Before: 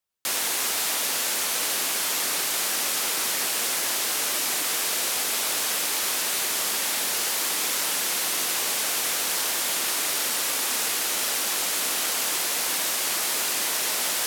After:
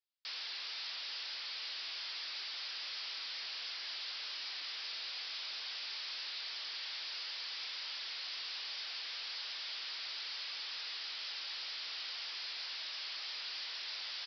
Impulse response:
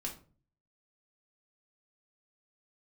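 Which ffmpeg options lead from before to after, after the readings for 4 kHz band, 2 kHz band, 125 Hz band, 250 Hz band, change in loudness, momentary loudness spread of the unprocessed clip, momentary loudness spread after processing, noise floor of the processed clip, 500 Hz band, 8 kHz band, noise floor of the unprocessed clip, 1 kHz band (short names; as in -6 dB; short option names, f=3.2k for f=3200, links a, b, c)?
-11.0 dB, -15.5 dB, under -35 dB, under -30 dB, -16.5 dB, 0 LU, 0 LU, -44 dBFS, -27.0 dB, -35.5 dB, -27 dBFS, -21.5 dB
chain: -af "flanger=delay=9.6:depth=1.4:regen=-53:speed=0.31:shape=triangular,aresample=11025,asoftclip=type=tanh:threshold=-36dB,aresample=44100,aderivative,volume=4dB"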